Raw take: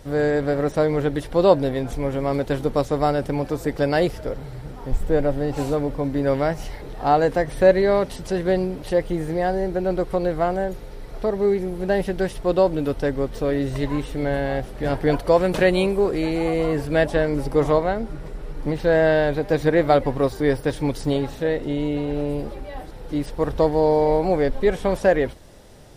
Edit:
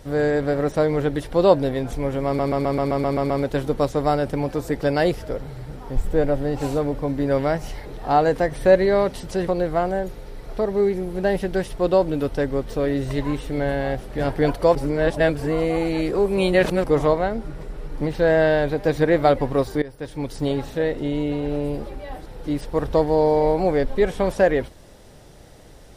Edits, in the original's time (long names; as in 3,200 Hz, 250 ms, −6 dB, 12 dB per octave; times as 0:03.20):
0:02.26: stutter 0.13 s, 9 plays
0:08.43–0:10.12: remove
0:15.40–0:17.49: reverse
0:20.47–0:21.25: fade in, from −20 dB